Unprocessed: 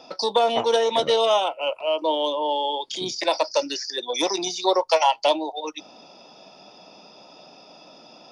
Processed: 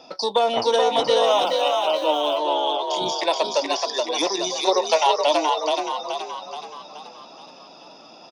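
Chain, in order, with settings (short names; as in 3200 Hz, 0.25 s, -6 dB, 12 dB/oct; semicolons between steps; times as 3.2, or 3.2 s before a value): frequency-shifting echo 0.426 s, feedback 50%, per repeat +45 Hz, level -3.5 dB; 1.26–2.38 sample gate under -40.5 dBFS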